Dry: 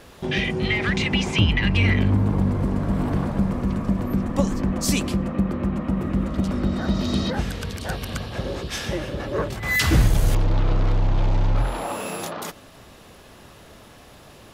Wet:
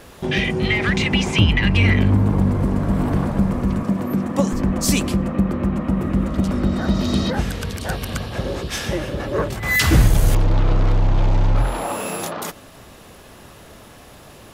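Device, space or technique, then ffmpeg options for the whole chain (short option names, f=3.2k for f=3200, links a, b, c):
exciter from parts: -filter_complex "[0:a]asettb=1/sr,asplit=3[a][b][c];[a]atrim=end=3.834[d];[b]atrim=start=3.83:end=4.53,asetpts=PTS-STARTPTS,afade=t=in:d=0.004:c=qsin,afade=t=out:st=0.696:d=0.004:c=qsin,highpass=140[e];[c]atrim=start=4.526[f];[d][e]acrossfade=d=0.004:c1=hsin:c2=qsin[g];[g][f]acrossfade=d=0.004:c1=qsin:c2=hsin,asplit=2[h][i];[i]highpass=4.3k,asoftclip=type=tanh:threshold=-28.5dB,highpass=f=4.3k:p=1,volume=-7.5dB[j];[h][j]amix=inputs=2:normalize=0,volume=3.5dB"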